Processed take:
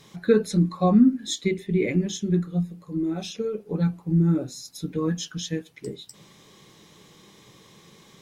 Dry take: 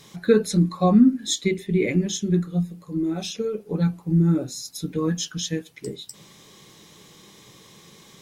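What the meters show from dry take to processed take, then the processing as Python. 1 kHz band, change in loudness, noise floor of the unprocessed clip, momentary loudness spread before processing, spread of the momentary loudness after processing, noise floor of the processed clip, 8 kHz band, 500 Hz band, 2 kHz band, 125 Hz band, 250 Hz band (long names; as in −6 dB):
−1.5 dB, −1.5 dB, −51 dBFS, 13 LU, 13 LU, −54 dBFS, −5.5 dB, −1.5 dB, −2.5 dB, −1.5 dB, −1.5 dB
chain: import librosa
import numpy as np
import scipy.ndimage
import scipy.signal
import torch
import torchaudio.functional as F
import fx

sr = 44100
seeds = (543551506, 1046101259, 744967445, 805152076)

y = fx.high_shelf(x, sr, hz=4300.0, db=-5.5)
y = y * librosa.db_to_amplitude(-1.5)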